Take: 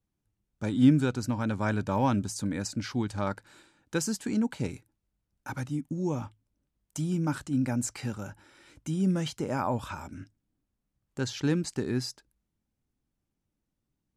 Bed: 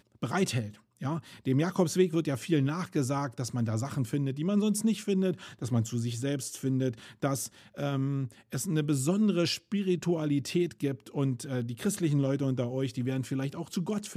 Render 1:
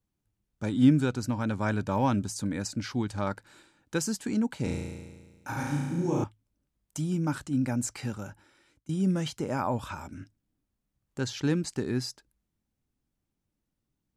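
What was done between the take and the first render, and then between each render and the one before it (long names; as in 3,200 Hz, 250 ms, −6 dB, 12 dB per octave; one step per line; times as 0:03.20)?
0:04.63–0:06.24: flutter between parallel walls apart 6 metres, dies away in 1.4 s
0:08.19–0:08.89: fade out, to −23.5 dB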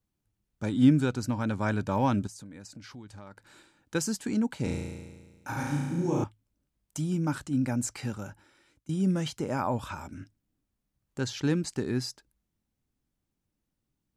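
0:02.27–0:03.95: downward compressor 4 to 1, threshold −45 dBFS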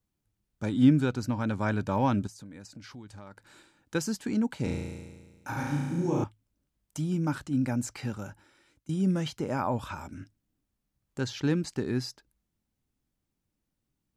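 dynamic equaliser 8,600 Hz, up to −6 dB, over −54 dBFS, Q 1.1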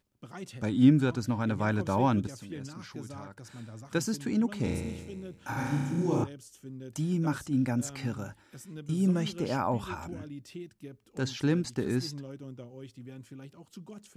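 mix in bed −14.5 dB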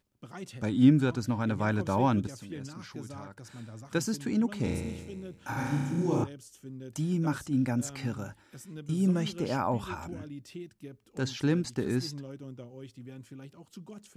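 no processing that can be heard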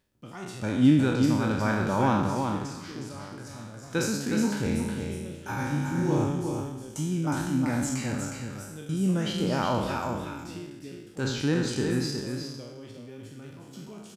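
peak hold with a decay on every bin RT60 0.96 s
single-tap delay 363 ms −5.5 dB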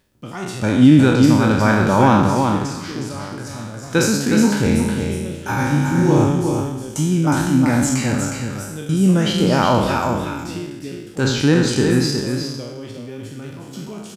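level +11 dB
brickwall limiter −2 dBFS, peak gain reduction 3 dB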